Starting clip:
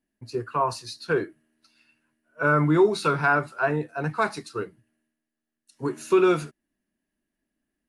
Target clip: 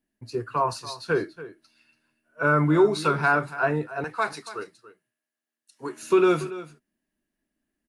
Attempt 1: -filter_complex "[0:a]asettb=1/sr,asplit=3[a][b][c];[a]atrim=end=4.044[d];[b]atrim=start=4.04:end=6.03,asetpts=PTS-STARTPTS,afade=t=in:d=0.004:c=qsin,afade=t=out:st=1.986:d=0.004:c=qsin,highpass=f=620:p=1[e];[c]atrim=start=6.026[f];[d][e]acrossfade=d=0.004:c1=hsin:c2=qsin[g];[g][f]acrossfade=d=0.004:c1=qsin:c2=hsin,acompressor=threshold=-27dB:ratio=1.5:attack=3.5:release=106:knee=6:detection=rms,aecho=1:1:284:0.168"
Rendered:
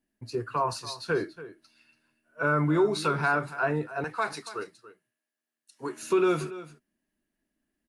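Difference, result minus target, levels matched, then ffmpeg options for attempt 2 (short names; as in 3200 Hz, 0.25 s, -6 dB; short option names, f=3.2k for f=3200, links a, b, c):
compressor: peak gain reduction +5.5 dB
-filter_complex "[0:a]asettb=1/sr,asplit=3[a][b][c];[a]atrim=end=4.044[d];[b]atrim=start=4.04:end=6.03,asetpts=PTS-STARTPTS,afade=t=in:d=0.004:c=qsin,afade=t=out:st=1.986:d=0.004:c=qsin,highpass=f=620:p=1[e];[c]atrim=start=6.026[f];[d][e]acrossfade=d=0.004:c1=hsin:c2=qsin[g];[g][f]acrossfade=d=0.004:c1=qsin:c2=hsin,aecho=1:1:284:0.168"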